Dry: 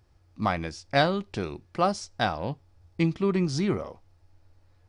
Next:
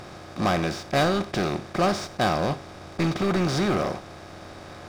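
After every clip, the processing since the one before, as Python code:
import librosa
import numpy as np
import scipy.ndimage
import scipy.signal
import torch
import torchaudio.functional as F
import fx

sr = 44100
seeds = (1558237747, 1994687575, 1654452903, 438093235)

y = fx.bin_compress(x, sr, power=0.4)
y = fx.leveller(y, sr, passes=3)
y = fx.upward_expand(y, sr, threshold_db=-23.0, expansion=1.5)
y = y * librosa.db_to_amplitude(-9.0)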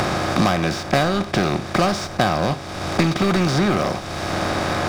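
y = fx.peak_eq(x, sr, hz=420.0, db=-3.0, octaves=0.85)
y = fx.band_squash(y, sr, depth_pct=100)
y = y * librosa.db_to_amplitude(5.5)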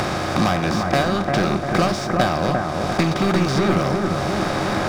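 y = fx.echo_bbd(x, sr, ms=349, stages=4096, feedback_pct=60, wet_db=-3.5)
y = y * librosa.db_to_amplitude(-1.5)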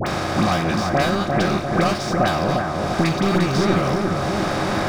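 y = fx.dispersion(x, sr, late='highs', ms=67.0, hz=1300.0)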